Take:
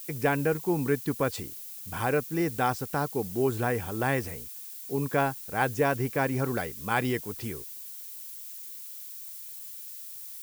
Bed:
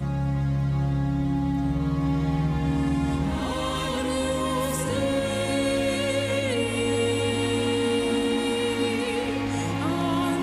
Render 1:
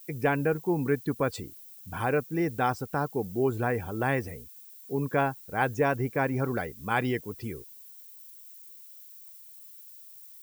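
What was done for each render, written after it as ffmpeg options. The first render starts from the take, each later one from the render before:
ffmpeg -i in.wav -af "afftdn=noise_reduction=11:noise_floor=-42" out.wav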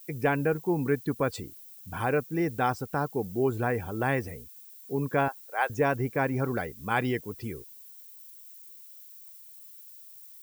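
ffmpeg -i in.wav -filter_complex "[0:a]asettb=1/sr,asplit=3[link_01][link_02][link_03];[link_01]atrim=end=5.284[link_04];[link_02]atrim=start=5.28:end=5.7,asetpts=PTS-STARTPTS,afade=type=in:duration=0.004:curve=qsin,afade=type=out:start_time=0.416:duration=0.004:curve=qsin,highpass=frequency=520:width=0.5412,highpass=frequency=520:width=1.3066[link_05];[link_03]atrim=start=5.696[link_06];[link_04][link_05]acrossfade=duration=0.004:curve1=hsin:curve2=qsin[link_07];[link_07][link_06]acrossfade=duration=0.004:curve1=qsin:curve2=hsin" out.wav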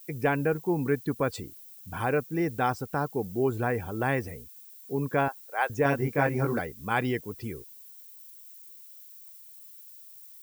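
ffmpeg -i in.wav -filter_complex "[0:a]asettb=1/sr,asplit=3[link_01][link_02][link_03];[link_01]atrim=end=5.834[link_04];[link_02]atrim=start=5.83:end=6.59,asetpts=PTS-STARTPTS,afade=type=in:duration=0.004:curve=qsin,afade=type=out:start_time=0.756:duration=0.004:curve=qsin,asplit=2[link_05][link_06];[link_06]adelay=21,volume=-2dB[link_07];[link_05][link_07]amix=inputs=2:normalize=0,atrim=end_sample=33516[link_08];[link_03]atrim=start=6.586[link_09];[link_04][link_08]acrossfade=duration=0.004:curve1=hsin:curve2=qsin[link_10];[link_10][link_09]acrossfade=duration=0.004:curve1=qsin:curve2=hsin" out.wav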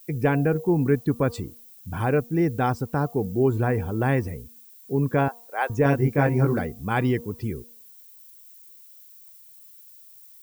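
ffmpeg -i in.wav -af "lowshelf=frequency=400:gain=9.5,bandreject=frequency=236:width_type=h:width=4,bandreject=frequency=472:width_type=h:width=4,bandreject=frequency=708:width_type=h:width=4,bandreject=frequency=944:width_type=h:width=4,bandreject=frequency=1180:width_type=h:width=4" out.wav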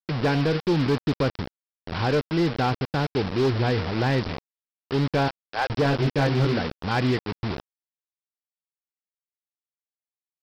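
ffmpeg -i in.wav -af "aresample=11025,acrusher=bits=4:mix=0:aa=0.000001,aresample=44100,asoftclip=type=hard:threshold=-16.5dB" out.wav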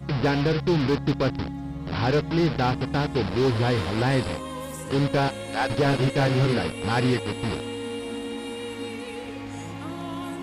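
ffmpeg -i in.wav -i bed.wav -filter_complex "[1:a]volume=-8.5dB[link_01];[0:a][link_01]amix=inputs=2:normalize=0" out.wav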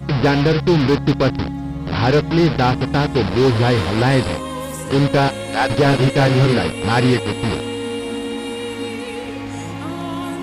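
ffmpeg -i in.wav -af "volume=7.5dB" out.wav

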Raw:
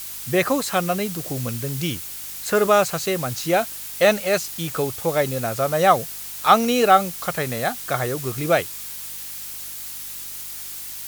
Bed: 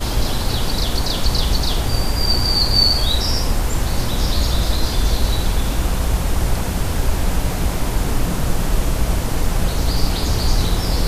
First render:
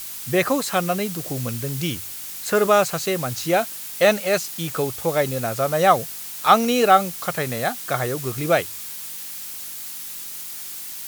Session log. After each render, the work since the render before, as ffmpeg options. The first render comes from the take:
ffmpeg -i in.wav -af "bandreject=frequency=50:width_type=h:width=4,bandreject=frequency=100:width_type=h:width=4" out.wav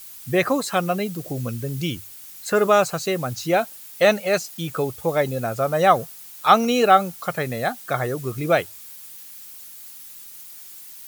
ffmpeg -i in.wav -af "afftdn=noise_reduction=10:noise_floor=-34" out.wav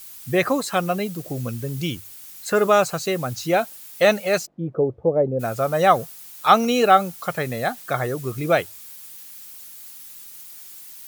ffmpeg -i in.wav -filter_complex "[0:a]asettb=1/sr,asplit=3[link_01][link_02][link_03];[link_01]atrim=end=0.524[link_04];[link_02]atrim=start=0.52:end=2.05,asetpts=PTS-STARTPTS,afade=type=in:duration=0.004:curve=qsin,afade=type=out:start_time=1.526:duration=0.004:curve=qsin,aeval=exprs='sgn(val(0))*max(abs(val(0))-0.00224,0)':channel_layout=same[link_05];[link_03]atrim=start=2.046[link_06];[link_04][link_05]acrossfade=duration=0.004:curve1=hsin:curve2=qsin[link_07];[link_07][link_06]acrossfade=duration=0.004:curve1=qsin:curve2=hsin,asplit=3[link_08][link_09][link_10];[link_08]afade=type=out:start_time=4.45:duration=0.02[link_11];[link_09]lowpass=frequency=500:width_type=q:width=1.6,afade=type=in:start_time=4.45:duration=0.02,afade=type=out:start_time=5.39:duration=0.02[link_12];[link_10]afade=type=in:start_time=5.39:duration=0.02[link_13];[link_11][link_12][link_13]amix=inputs=3:normalize=0,asettb=1/sr,asplit=3[link_14][link_15][link_16];[link_14]atrim=end=7.284[link_17];[link_15]atrim=start=7.28:end=7.83,asetpts=PTS-STARTPTS,afade=type=in:duration=0.004:curve=qsin,afade=type=out:start_time=0.546:duration=0.004:curve=qsin,aeval=exprs='val(0)*gte(abs(val(0)),0.00794)':channel_layout=same[link_18];[link_16]atrim=start=7.826[link_19];[link_17][link_18]acrossfade=duration=0.004:curve1=hsin:curve2=qsin[link_20];[link_20][link_19]acrossfade=duration=0.004:curve1=qsin:curve2=hsin" out.wav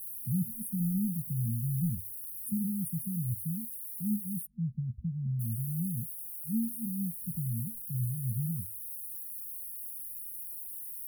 ffmpeg -i in.wav -af "afftfilt=real='re*(1-between(b*sr/4096,230,9200))':imag='im*(1-between(b*sr/4096,230,9200))':win_size=4096:overlap=0.75,asubboost=boost=5:cutoff=66" out.wav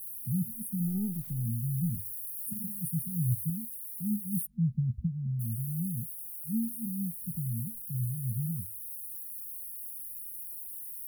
ffmpeg -i in.wav -filter_complex "[0:a]asplit=3[link_01][link_02][link_03];[link_01]afade=type=out:start_time=0.86:duration=0.02[link_04];[link_02]aeval=exprs='if(lt(val(0),0),0.708*val(0),val(0))':channel_layout=same,afade=type=in:start_time=0.86:duration=0.02,afade=type=out:start_time=1.44:duration=0.02[link_05];[link_03]afade=type=in:start_time=1.44:duration=0.02[link_06];[link_04][link_05][link_06]amix=inputs=3:normalize=0,asettb=1/sr,asplit=3[link_07][link_08][link_09];[link_07]atrim=end=1.944[link_10];[link_08]atrim=start=1.94:end=3.5,asetpts=PTS-STARTPTS,afade=type=in:duration=0.004:curve=qsin,afade=type=out:start_time=1.556:duration=0.004:curve=qsin,aecho=1:1:7.4:0.88,atrim=end_sample=68796[link_11];[link_09]atrim=start=3.496[link_12];[link_10][link_11]acrossfade=duration=0.004:curve1=hsin:curve2=qsin[link_13];[link_13][link_12]acrossfade=duration=0.004:curve1=qsin:curve2=hsin,asplit=3[link_14][link_15][link_16];[link_14]afade=type=out:start_time=4.32:duration=0.02[link_17];[link_15]acontrast=31,afade=type=in:start_time=4.32:duration=0.02,afade=type=out:start_time=5.06:duration=0.02[link_18];[link_16]afade=type=in:start_time=5.06:duration=0.02[link_19];[link_17][link_18][link_19]amix=inputs=3:normalize=0" out.wav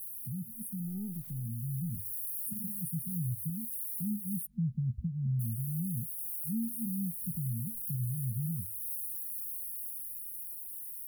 ffmpeg -i in.wav -af "alimiter=level_in=6.5dB:limit=-24dB:level=0:latency=1:release=325,volume=-6.5dB,dynaudnorm=framelen=340:gausssize=11:maxgain=4.5dB" out.wav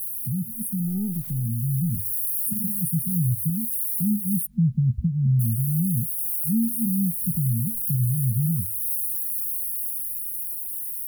ffmpeg -i in.wav -af "volume=11.5dB" out.wav

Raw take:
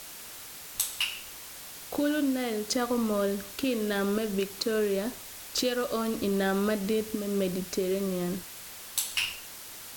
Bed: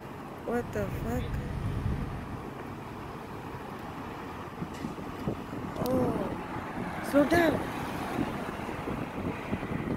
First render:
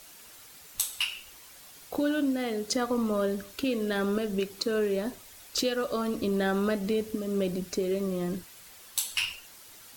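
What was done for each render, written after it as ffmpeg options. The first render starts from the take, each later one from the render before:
ffmpeg -i in.wav -af "afftdn=noise_reduction=8:noise_floor=-44" out.wav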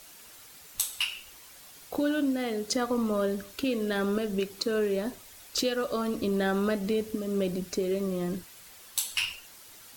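ffmpeg -i in.wav -af anull out.wav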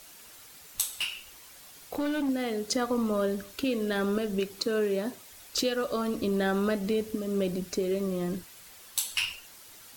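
ffmpeg -i in.wav -filter_complex "[0:a]asettb=1/sr,asplit=3[link_01][link_02][link_03];[link_01]atrim=end=0.904[link_04];[link_02]atrim=start=0.9:end=2.29,asetpts=PTS-STARTPTS,afade=type=in:duration=0.004:curve=qsin,afade=type=out:start_time=1.386:duration=0.004:curve=qsin,asoftclip=type=hard:threshold=-26dB[link_05];[link_03]atrim=start=2.286[link_06];[link_04][link_05]acrossfade=duration=0.004:curve1=hsin:curve2=qsin[link_07];[link_07][link_06]acrossfade=duration=0.004:curve1=qsin:curve2=hsin,asettb=1/sr,asplit=3[link_08][link_09][link_10];[link_08]atrim=end=4.664[link_11];[link_09]atrim=start=4.66:end=5.31,asetpts=PTS-STARTPTS,afade=type=in:duration=0.004:curve=qsin,afade=type=out:start_time=0.646:duration=0.004:curve=qsin,highpass=110[link_12];[link_10]atrim=start=5.306[link_13];[link_11][link_12]acrossfade=duration=0.004:curve1=hsin:curve2=qsin[link_14];[link_14][link_13]acrossfade=duration=0.004:curve1=qsin:curve2=hsin" out.wav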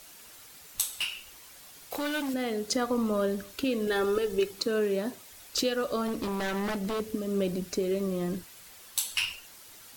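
ffmpeg -i in.wav -filter_complex "[0:a]asettb=1/sr,asplit=3[link_01][link_02][link_03];[link_01]atrim=end=1.914[link_04];[link_02]atrim=start=1.91:end=2.34,asetpts=PTS-STARTPTS,afade=type=in:duration=0.004:curve=qsin,afade=type=out:start_time=0.426:duration=0.004:curve=qsin,tiltshelf=frequency=660:gain=-6.5[link_05];[link_03]atrim=start=2.336[link_06];[link_04][link_05]acrossfade=duration=0.004:curve1=hsin:curve2=qsin[link_07];[link_07][link_06]acrossfade=duration=0.004:curve1=qsin:curve2=hsin,asettb=1/sr,asplit=3[link_08][link_09][link_10];[link_08]atrim=end=3.874[link_11];[link_09]atrim=start=3.87:end=4.51,asetpts=PTS-STARTPTS,afade=type=in:duration=0.004:curve=qsin,afade=type=out:start_time=0.636:duration=0.004:curve=qsin,aecho=1:1:2.3:0.7,atrim=end_sample=28224[link_12];[link_10]atrim=start=4.506[link_13];[link_11][link_12]acrossfade=duration=0.004:curve1=hsin:curve2=qsin[link_14];[link_14][link_13]acrossfade=duration=0.004:curve1=qsin:curve2=hsin,asettb=1/sr,asplit=3[link_15][link_16][link_17];[link_15]atrim=end=6.084[link_18];[link_16]atrim=start=6.08:end=7,asetpts=PTS-STARTPTS,afade=type=in:duration=0.004:curve=qsin,afade=type=out:start_time=0.916:duration=0.004:curve=qsin,aeval=exprs='0.0531*(abs(mod(val(0)/0.0531+3,4)-2)-1)':channel_layout=same[link_19];[link_17]atrim=start=6.996[link_20];[link_18][link_19]acrossfade=duration=0.004:curve1=hsin:curve2=qsin[link_21];[link_21][link_20]acrossfade=duration=0.004:curve1=qsin:curve2=hsin" out.wav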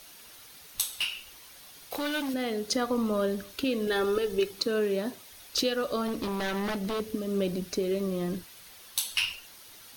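ffmpeg -i in.wav -af "equalizer=frequency=3700:width_type=o:width=0.77:gain=3,bandreject=frequency=7500:width=6.2" out.wav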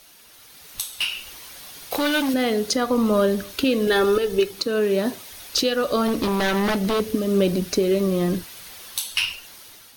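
ffmpeg -i in.wav -af "alimiter=limit=-19dB:level=0:latency=1:release=471,dynaudnorm=framelen=280:gausssize=5:maxgain=9.5dB" out.wav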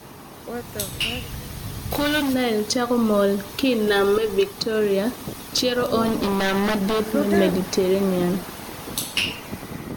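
ffmpeg -i in.wav -i bed.wav -filter_complex "[1:a]volume=-0.5dB[link_01];[0:a][link_01]amix=inputs=2:normalize=0" out.wav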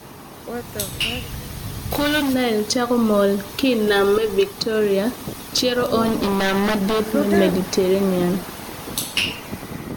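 ffmpeg -i in.wav -af "volume=2dB" out.wav

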